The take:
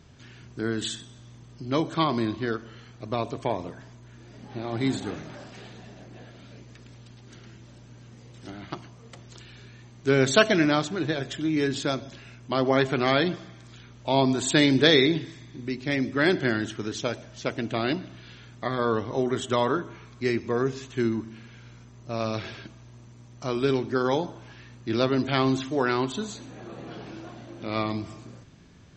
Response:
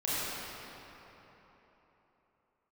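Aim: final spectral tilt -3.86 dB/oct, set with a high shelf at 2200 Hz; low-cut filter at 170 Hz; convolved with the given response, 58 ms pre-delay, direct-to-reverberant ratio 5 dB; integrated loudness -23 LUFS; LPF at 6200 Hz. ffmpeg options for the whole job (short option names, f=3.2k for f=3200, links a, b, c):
-filter_complex "[0:a]highpass=170,lowpass=6.2k,highshelf=f=2.2k:g=-3.5,asplit=2[a][b];[1:a]atrim=start_sample=2205,adelay=58[c];[b][c]afir=irnorm=-1:irlink=0,volume=-14dB[d];[a][d]amix=inputs=2:normalize=0,volume=3.5dB"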